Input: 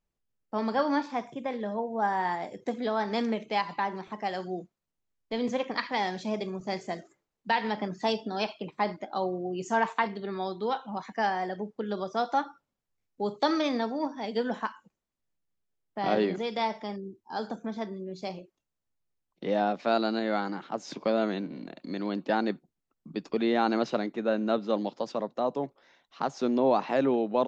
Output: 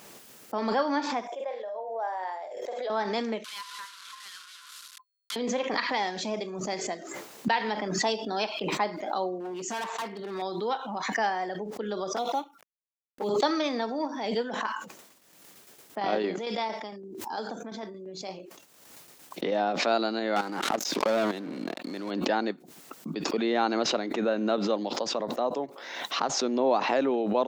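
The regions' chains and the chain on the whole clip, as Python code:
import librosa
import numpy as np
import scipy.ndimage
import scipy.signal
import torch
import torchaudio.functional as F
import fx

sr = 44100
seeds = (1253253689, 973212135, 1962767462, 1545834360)

y = fx.chain(x, sr, fx.ladder_highpass(hz=500.0, resonance_pct=60),
    fx.doubler(ms=48.0, db=-9.0),
    fx.sustainer(db_per_s=65.0), at=(1.27, 2.9))
y = fx.chain(y, sr, fx.delta_mod(bps=64000, step_db=-32.5),
    fx.cheby_ripple_highpass(hz=1000.0, ripple_db=9),
    fx.tube_stage(drive_db=33.0, bias=0.35), at=(3.44, 5.36))
y = fx.chain(y, sr, fx.highpass(hz=43.0, slope=12),
    fx.overload_stage(gain_db=31.0), at=(9.4, 10.42))
y = fx.chain(y, sr, fx.law_mismatch(coded='A'),
    fx.env_flanger(rest_ms=9.6, full_db=-28.0), at=(12.16, 13.29))
y = fx.chain(y, sr, fx.tremolo_shape(shape='saw_down', hz=8.8, depth_pct=60),
    fx.sustainer(db_per_s=60.0), at=(14.42, 19.52))
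y = fx.chain(y, sr, fx.level_steps(step_db=15),
    fx.leveller(passes=3), at=(20.36, 22.11))
y = scipy.signal.sosfilt(scipy.signal.butter(2, 260.0, 'highpass', fs=sr, output='sos'), y)
y = fx.high_shelf(y, sr, hz=5200.0, db=4.0)
y = fx.pre_swell(y, sr, db_per_s=41.0)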